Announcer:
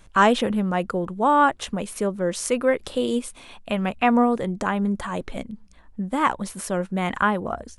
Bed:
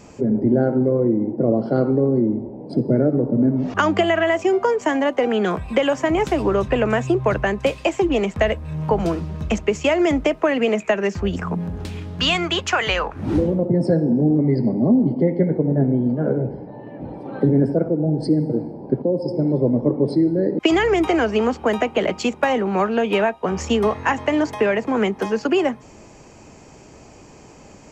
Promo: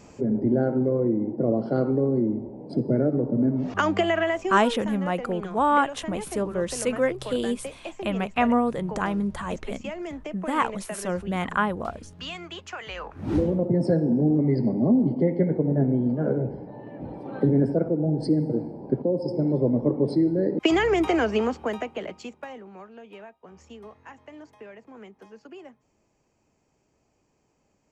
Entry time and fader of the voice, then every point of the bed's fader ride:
4.35 s, -3.0 dB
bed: 4.22 s -5 dB
4.86 s -17 dB
12.88 s -17 dB
13.34 s -4 dB
21.35 s -4 dB
22.86 s -25.5 dB

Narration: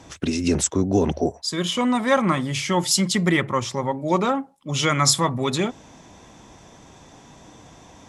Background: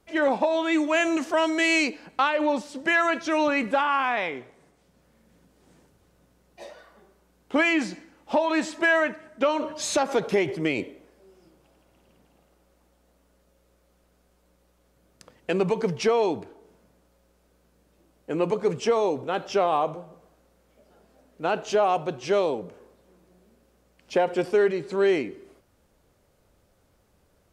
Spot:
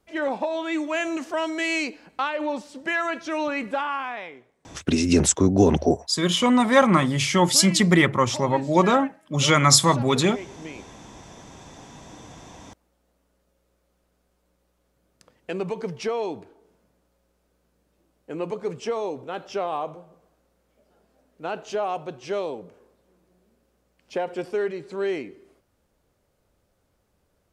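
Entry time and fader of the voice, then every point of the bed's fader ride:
4.65 s, +2.5 dB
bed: 3.86 s -3.5 dB
4.57 s -13.5 dB
11.13 s -13.5 dB
11.74 s -5 dB

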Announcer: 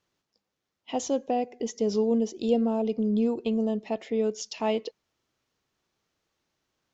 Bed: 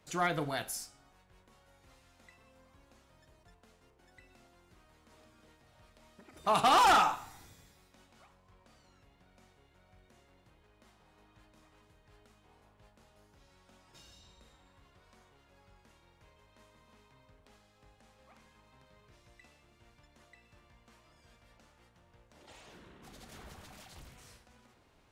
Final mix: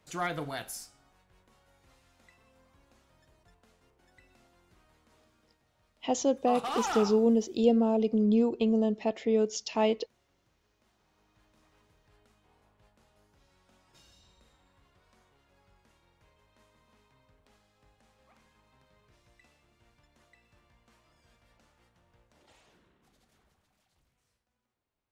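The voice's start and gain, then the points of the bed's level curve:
5.15 s, +0.5 dB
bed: 4.91 s -1.5 dB
5.73 s -9.5 dB
10.81 s -9.5 dB
11.72 s -3 dB
22.23 s -3 dB
23.65 s -22 dB

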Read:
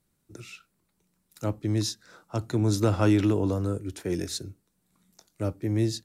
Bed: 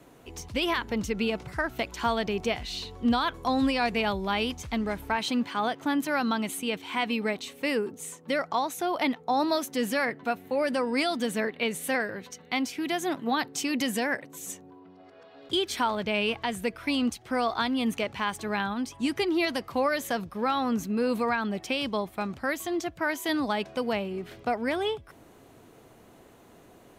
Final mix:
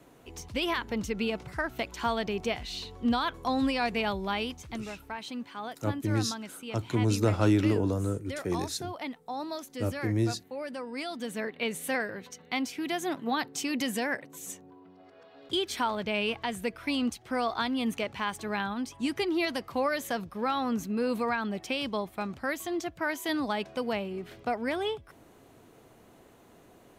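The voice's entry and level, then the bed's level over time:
4.40 s, -2.0 dB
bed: 4.28 s -2.5 dB
4.93 s -10.5 dB
10.93 s -10.5 dB
11.69 s -2.5 dB

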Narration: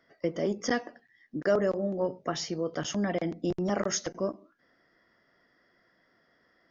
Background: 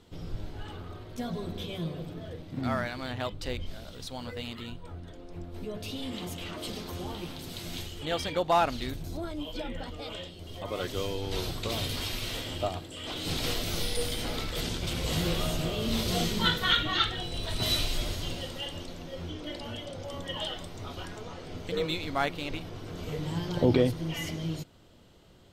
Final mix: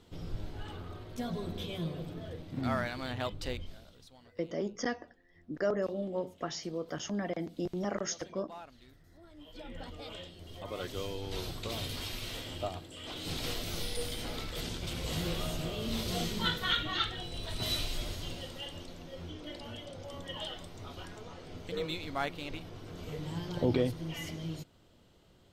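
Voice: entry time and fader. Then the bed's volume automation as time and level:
4.15 s, -5.5 dB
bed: 3.47 s -2 dB
4.34 s -23.5 dB
9.12 s -23.5 dB
9.82 s -5.5 dB

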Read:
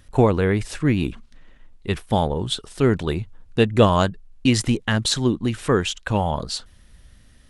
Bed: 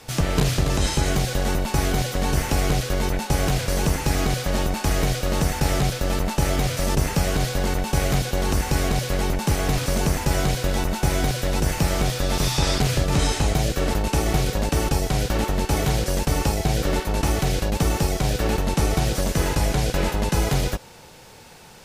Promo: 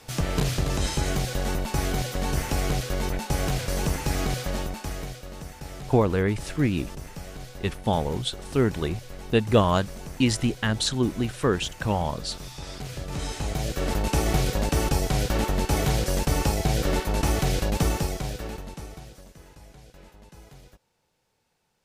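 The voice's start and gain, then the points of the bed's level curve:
5.75 s, -4.0 dB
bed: 4.42 s -4.5 dB
5.34 s -17.5 dB
12.6 s -17.5 dB
14.07 s -2 dB
17.84 s -2 dB
19.39 s -27.5 dB

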